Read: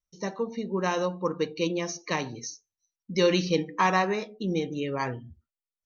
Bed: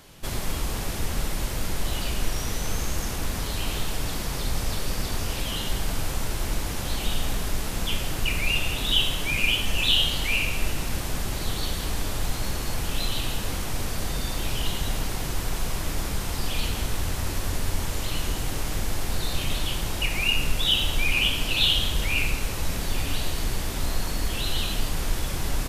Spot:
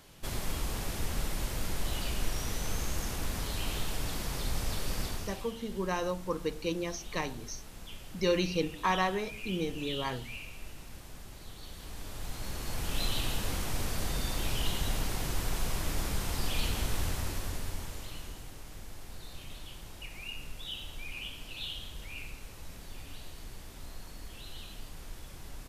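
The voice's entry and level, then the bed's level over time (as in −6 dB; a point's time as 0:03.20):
5.05 s, −5.5 dB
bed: 0:05.04 −6 dB
0:05.55 −19 dB
0:11.58 −19 dB
0:13.03 −4.5 dB
0:17.04 −4.5 dB
0:18.56 −18.5 dB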